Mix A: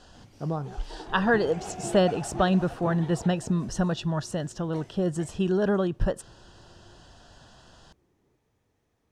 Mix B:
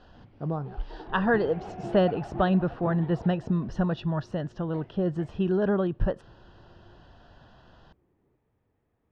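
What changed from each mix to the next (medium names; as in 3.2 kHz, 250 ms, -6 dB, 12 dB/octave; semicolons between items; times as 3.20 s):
first sound: add distance through air 210 m; master: add distance through air 290 m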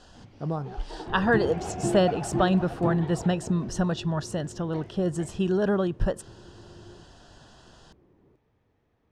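first sound +3.5 dB; second sound +9.5 dB; master: remove distance through air 290 m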